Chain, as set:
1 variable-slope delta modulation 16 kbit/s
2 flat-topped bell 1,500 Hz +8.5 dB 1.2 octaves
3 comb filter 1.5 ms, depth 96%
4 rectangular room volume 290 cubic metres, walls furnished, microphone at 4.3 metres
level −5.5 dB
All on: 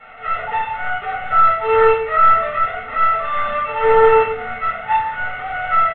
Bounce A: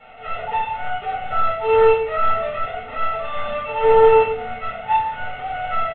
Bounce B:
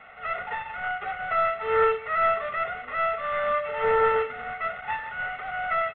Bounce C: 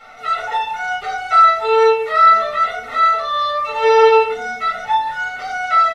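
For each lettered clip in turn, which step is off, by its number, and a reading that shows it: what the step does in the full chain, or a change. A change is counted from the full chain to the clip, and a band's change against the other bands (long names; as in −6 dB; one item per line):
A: 2, 2 kHz band −6.5 dB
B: 4, change in momentary loudness spread −1 LU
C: 1, 4 kHz band +9.0 dB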